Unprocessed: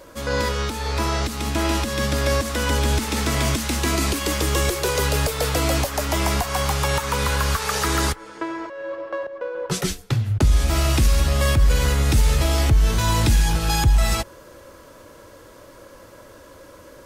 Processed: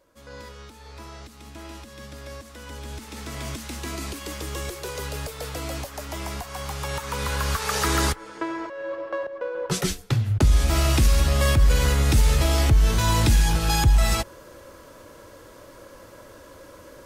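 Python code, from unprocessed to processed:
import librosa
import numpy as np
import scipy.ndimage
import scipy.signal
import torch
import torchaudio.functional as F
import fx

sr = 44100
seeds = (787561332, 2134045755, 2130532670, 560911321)

y = fx.gain(x, sr, db=fx.line((2.62, -18.5), (3.56, -11.0), (6.57, -11.0), (7.84, -1.0)))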